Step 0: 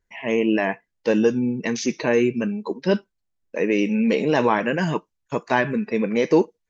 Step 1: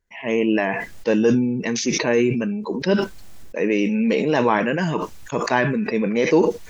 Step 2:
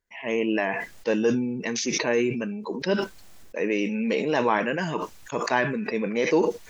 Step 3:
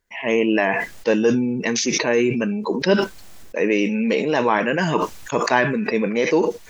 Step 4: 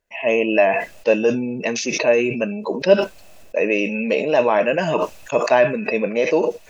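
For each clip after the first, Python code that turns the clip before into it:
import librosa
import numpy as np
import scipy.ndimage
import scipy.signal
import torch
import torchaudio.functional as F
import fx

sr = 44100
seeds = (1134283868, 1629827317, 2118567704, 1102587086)

y1 = fx.sustainer(x, sr, db_per_s=35.0)
y2 = fx.low_shelf(y1, sr, hz=240.0, db=-7.5)
y2 = y2 * 10.0 ** (-3.0 / 20.0)
y3 = fx.rider(y2, sr, range_db=4, speed_s=0.5)
y3 = y3 * 10.0 ** (6.0 / 20.0)
y4 = fx.small_body(y3, sr, hz=(610.0, 2600.0), ring_ms=20, db=13)
y4 = y4 * 10.0 ** (-4.0 / 20.0)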